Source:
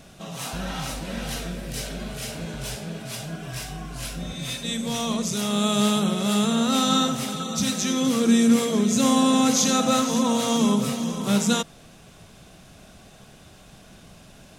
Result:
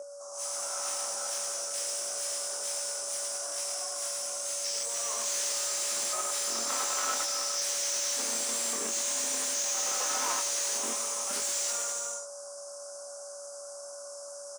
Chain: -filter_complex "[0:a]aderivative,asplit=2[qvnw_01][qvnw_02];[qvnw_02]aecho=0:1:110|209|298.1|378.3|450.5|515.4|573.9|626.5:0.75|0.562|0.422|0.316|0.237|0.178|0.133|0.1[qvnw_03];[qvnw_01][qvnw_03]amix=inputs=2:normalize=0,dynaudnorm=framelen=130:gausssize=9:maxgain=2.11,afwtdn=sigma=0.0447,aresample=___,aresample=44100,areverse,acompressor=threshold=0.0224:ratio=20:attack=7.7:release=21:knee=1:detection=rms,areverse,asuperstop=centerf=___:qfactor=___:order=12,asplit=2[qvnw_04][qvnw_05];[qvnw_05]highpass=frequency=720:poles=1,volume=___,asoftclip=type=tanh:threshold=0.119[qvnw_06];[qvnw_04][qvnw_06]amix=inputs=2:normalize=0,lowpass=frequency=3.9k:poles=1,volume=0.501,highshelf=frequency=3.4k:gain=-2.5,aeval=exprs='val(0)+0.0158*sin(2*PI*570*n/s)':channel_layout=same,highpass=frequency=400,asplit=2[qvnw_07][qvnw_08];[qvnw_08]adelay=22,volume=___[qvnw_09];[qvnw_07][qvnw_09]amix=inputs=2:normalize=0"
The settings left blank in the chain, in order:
22050, 2700, 0.71, 44.7, 0.501